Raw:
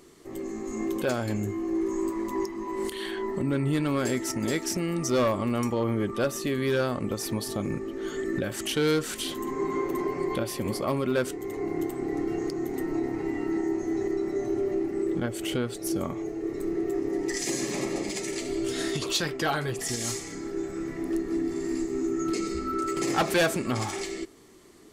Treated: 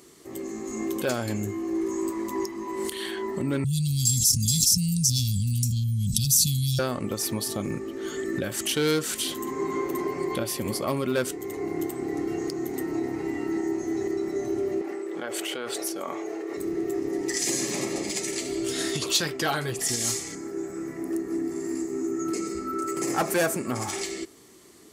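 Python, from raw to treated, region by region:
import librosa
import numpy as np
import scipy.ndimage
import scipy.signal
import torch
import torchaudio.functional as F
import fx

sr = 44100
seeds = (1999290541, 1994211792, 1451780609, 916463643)

y = fx.chain(x, sr, fx.cheby2_bandstop(low_hz=370.0, high_hz=1900.0, order=4, stop_db=50),
    fx.comb(ms=1.5, depth=0.55),
    fx.env_flatten(amount_pct=100), at=(3.64, 6.79))
y = fx.chain(y, sr, fx.highpass(hz=560.0, slope=12),
    fx.high_shelf(hz=4000.0, db=-10.5),
    fx.env_flatten(amount_pct=100), at=(14.81, 16.57))
y = fx.chain(y, sr, fx.highpass(hz=120.0, slope=6),
    fx.peak_eq(hz=3600.0, db=-11.5, octaves=1.1), at=(20.35, 23.88))
y = scipy.signal.sosfilt(scipy.signal.butter(2, 61.0, 'highpass', fs=sr, output='sos'), y)
y = fx.high_shelf(y, sr, hz=4200.0, db=7.5)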